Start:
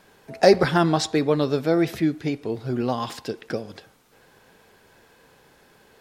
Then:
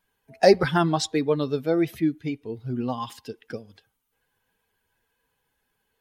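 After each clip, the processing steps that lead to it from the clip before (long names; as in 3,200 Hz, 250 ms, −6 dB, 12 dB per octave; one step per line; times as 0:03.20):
spectral dynamics exaggerated over time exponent 1.5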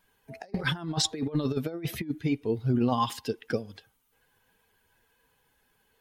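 compressor whose output falls as the input rises −28 dBFS, ratio −0.5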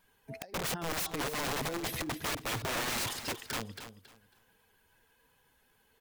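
wrap-around overflow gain 29 dB
on a send: repeating echo 274 ms, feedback 23%, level −11 dB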